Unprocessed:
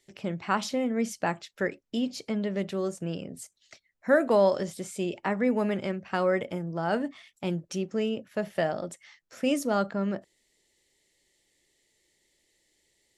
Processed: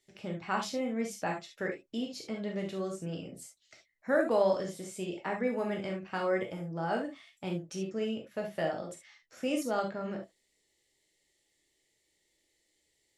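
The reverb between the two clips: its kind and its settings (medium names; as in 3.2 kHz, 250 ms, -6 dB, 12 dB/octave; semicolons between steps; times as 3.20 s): gated-style reverb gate 90 ms flat, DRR 1 dB; trim -7 dB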